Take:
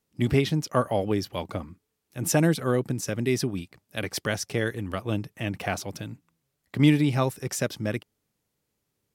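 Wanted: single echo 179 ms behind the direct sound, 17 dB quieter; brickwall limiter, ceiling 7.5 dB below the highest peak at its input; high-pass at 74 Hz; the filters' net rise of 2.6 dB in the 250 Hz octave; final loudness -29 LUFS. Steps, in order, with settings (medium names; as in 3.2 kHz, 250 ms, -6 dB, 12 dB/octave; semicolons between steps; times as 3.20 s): high-pass 74 Hz; peaking EQ 250 Hz +3.5 dB; peak limiter -13.5 dBFS; delay 179 ms -17 dB; trim -1.5 dB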